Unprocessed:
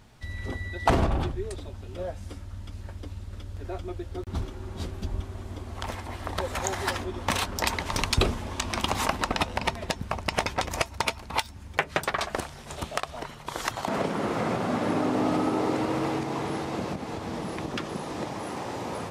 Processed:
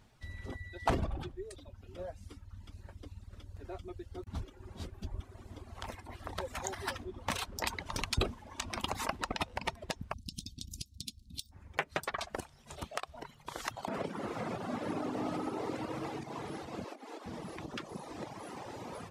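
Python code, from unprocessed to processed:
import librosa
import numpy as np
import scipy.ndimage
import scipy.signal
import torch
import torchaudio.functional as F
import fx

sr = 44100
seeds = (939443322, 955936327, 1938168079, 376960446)

y = fx.ellip_bandstop(x, sr, low_hz=250.0, high_hz=3800.0, order=3, stop_db=40, at=(10.12, 11.51), fade=0.02)
y = fx.steep_highpass(y, sr, hz=250.0, slope=48, at=(16.84, 17.26))
y = fx.dereverb_blind(y, sr, rt60_s=1.1)
y = y * librosa.db_to_amplitude(-8.0)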